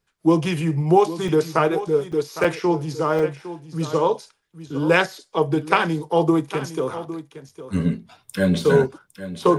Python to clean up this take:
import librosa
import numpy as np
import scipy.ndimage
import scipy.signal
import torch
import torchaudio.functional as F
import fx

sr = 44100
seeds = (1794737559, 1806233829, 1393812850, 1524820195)

y = fx.fix_interpolate(x, sr, at_s=(1.28, 2.12, 2.44, 3.19, 7.49), length_ms=4.3)
y = fx.fix_echo_inverse(y, sr, delay_ms=808, level_db=-13.5)